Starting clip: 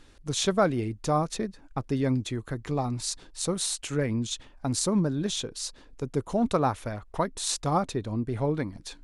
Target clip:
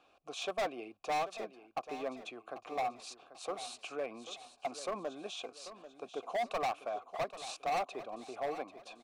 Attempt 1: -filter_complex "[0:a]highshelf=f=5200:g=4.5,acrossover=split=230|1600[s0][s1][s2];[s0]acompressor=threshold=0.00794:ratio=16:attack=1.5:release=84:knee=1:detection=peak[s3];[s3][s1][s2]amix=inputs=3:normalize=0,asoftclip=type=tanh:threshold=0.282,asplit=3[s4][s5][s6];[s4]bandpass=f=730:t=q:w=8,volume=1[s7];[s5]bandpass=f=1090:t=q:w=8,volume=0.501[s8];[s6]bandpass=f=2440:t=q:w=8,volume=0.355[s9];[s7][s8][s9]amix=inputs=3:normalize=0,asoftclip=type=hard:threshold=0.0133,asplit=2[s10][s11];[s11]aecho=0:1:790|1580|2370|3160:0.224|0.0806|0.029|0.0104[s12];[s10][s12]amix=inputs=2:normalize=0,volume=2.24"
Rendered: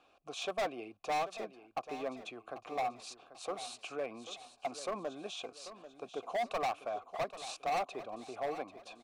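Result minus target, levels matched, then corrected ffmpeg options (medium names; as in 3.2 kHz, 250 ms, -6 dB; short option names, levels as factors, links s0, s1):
compression: peak gain reduction -8.5 dB
-filter_complex "[0:a]highshelf=f=5200:g=4.5,acrossover=split=230|1600[s0][s1][s2];[s0]acompressor=threshold=0.00282:ratio=16:attack=1.5:release=84:knee=1:detection=peak[s3];[s3][s1][s2]amix=inputs=3:normalize=0,asoftclip=type=tanh:threshold=0.282,asplit=3[s4][s5][s6];[s4]bandpass=f=730:t=q:w=8,volume=1[s7];[s5]bandpass=f=1090:t=q:w=8,volume=0.501[s8];[s6]bandpass=f=2440:t=q:w=8,volume=0.355[s9];[s7][s8][s9]amix=inputs=3:normalize=0,asoftclip=type=hard:threshold=0.0133,asplit=2[s10][s11];[s11]aecho=0:1:790|1580|2370|3160:0.224|0.0806|0.029|0.0104[s12];[s10][s12]amix=inputs=2:normalize=0,volume=2.24"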